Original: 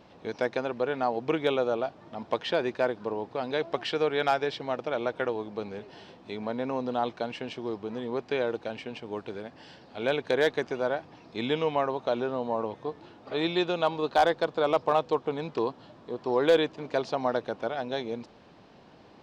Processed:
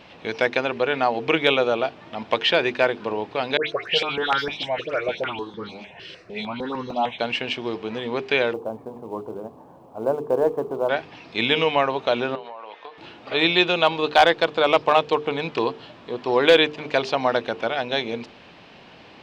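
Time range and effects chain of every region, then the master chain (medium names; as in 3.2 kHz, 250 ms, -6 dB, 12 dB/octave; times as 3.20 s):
3.57–7.19 s: phase dispersion highs, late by 120 ms, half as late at 2.2 kHz + stepped phaser 6.6 Hz 220–2500 Hz
8.53–10.89 s: elliptic low-pass 1.1 kHz, stop band 60 dB + hum notches 60/120/180/240/300/360/420/480 Hz + companded quantiser 8-bit
12.35–12.98 s: band-pass 700–4100 Hz + compression 12:1, threshold -39 dBFS
whole clip: peaking EQ 2.6 kHz +11 dB 1.3 oct; hum notches 50/100/150/200/250/300/350/400/450 Hz; trim +5.5 dB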